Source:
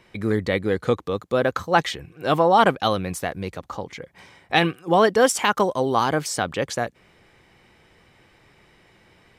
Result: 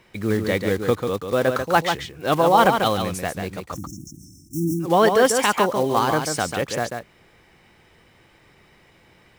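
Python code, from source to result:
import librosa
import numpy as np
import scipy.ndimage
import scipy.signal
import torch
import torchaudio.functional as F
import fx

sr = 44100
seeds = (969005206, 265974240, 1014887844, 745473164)

p1 = fx.block_float(x, sr, bits=5)
p2 = fx.spec_erase(p1, sr, start_s=3.72, length_s=1.08, low_hz=360.0, high_hz=5300.0)
p3 = p2 + fx.echo_single(p2, sr, ms=142, db=-6.0, dry=0)
y = fx.sustainer(p3, sr, db_per_s=28.0, at=(3.7, 5.09))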